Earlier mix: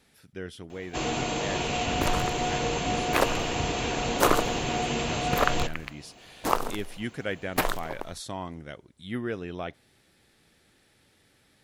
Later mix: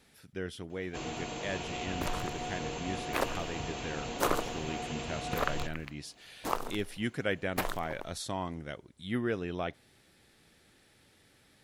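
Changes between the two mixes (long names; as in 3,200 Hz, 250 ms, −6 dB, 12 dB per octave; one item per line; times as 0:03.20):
first sound −10.0 dB
second sound −7.5 dB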